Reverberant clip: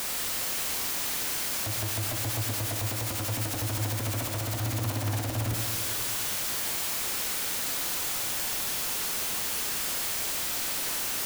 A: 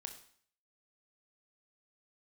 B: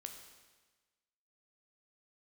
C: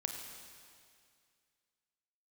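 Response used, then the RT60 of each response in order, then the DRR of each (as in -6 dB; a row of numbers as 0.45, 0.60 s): C; 0.55, 1.3, 2.2 s; 5.0, 4.0, 3.0 dB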